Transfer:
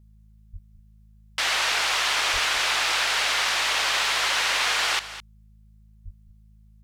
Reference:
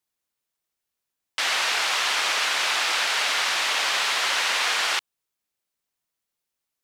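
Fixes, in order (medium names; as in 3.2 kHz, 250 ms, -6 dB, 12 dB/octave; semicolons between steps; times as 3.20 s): clip repair -15 dBFS; de-hum 53.1 Hz, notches 4; 0.52–0.64 s: high-pass 140 Hz 24 dB/octave; 2.32–2.44 s: high-pass 140 Hz 24 dB/octave; 6.04–6.16 s: high-pass 140 Hz 24 dB/octave; inverse comb 210 ms -14 dB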